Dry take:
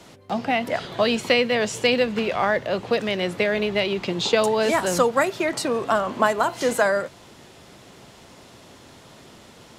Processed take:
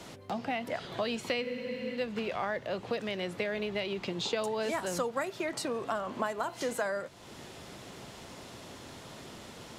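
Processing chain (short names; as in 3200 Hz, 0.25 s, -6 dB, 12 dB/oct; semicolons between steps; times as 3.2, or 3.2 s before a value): compressor 2:1, threshold -40 dBFS, peak gain reduction 14.5 dB; spectral freeze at 1.45, 0.51 s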